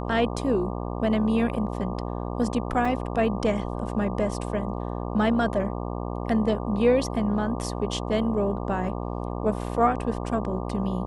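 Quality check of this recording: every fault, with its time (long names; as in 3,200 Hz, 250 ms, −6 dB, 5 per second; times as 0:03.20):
mains buzz 60 Hz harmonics 20 −31 dBFS
0:02.85: drop-out 3.8 ms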